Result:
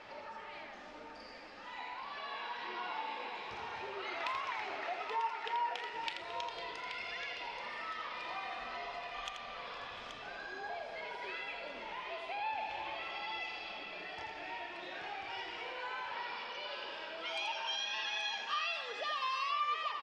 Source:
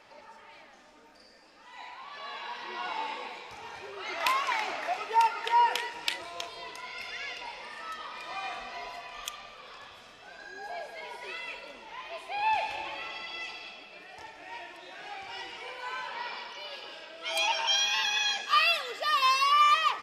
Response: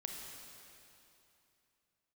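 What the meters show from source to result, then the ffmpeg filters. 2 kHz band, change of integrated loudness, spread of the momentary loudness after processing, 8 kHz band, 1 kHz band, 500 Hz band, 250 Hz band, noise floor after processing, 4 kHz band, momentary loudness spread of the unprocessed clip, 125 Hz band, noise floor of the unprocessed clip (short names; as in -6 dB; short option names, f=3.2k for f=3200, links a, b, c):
-7.0 dB, -10.0 dB, 9 LU, -16.0 dB, -9.5 dB, -4.0 dB, -2.0 dB, -50 dBFS, -9.5 dB, 20 LU, n/a, -55 dBFS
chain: -af "lowpass=4.2k,acompressor=threshold=-49dB:ratio=2.5,aecho=1:1:83|829:0.447|0.398,volume=4.5dB"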